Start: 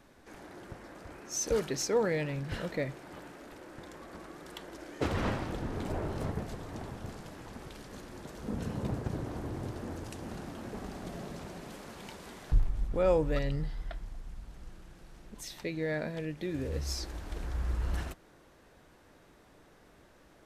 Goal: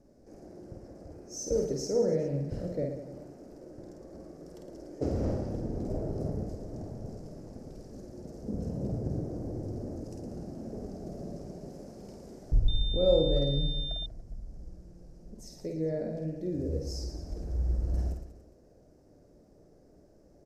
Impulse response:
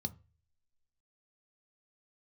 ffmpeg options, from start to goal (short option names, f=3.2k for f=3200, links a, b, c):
-filter_complex "[0:a]firequalizer=gain_entry='entry(600,0);entry(970,-18);entry(3500,-25);entry(5100,-5);entry(9200,-13)':delay=0.05:min_phase=1,aecho=1:1:50|112.5|190.6|288.3|410.4:0.631|0.398|0.251|0.158|0.1,asettb=1/sr,asplit=3[a][b][c];[a]atrim=end=12.684[d];[b]atrim=start=12.68:end=14.06,asetpts=PTS-STARTPTS,afade=t=in:d=0.004:c=qsin,afade=t=out:st=1.376:d=0.004:c=qsin,aeval=exprs='val(0)+0.0178*sin(2*PI*3600*n/s)':c=same[e];[c]atrim=start=14.056[f];[d][e]acrossfade=d=0.004:c1=hsin:c2=qsin[g];[g][f]acrossfade=d=0.004:c1=qsin:c2=hsin"